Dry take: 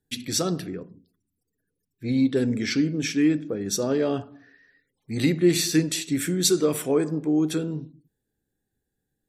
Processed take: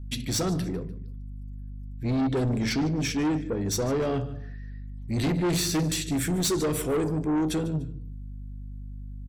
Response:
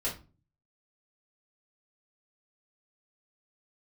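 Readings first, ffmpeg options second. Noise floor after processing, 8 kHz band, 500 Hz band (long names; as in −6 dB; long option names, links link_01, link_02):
−38 dBFS, −3.5 dB, −3.5 dB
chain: -filter_complex "[0:a]asplit=2[link_01][link_02];[link_02]equalizer=frequency=74:width=0.35:gain=12.5[link_03];[1:a]atrim=start_sample=2205[link_04];[link_03][link_04]afir=irnorm=-1:irlink=0,volume=-20dB[link_05];[link_01][link_05]amix=inputs=2:normalize=0,aeval=exprs='val(0)+0.00708*(sin(2*PI*50*n/s)+sin(2*PI*2*50*n/s)/2+sin(2*PI*3*50*n/s)/3+sin(2*PI*4*50*n/s)/4+sin(2*PI*5*50*n/s)/5)':channel_layout=same,lowshelf=frequency=140:gain=9,aecho=1:1:148|296:0.126|0.0352,asoftclip=type=tanh:threshold=-22dB"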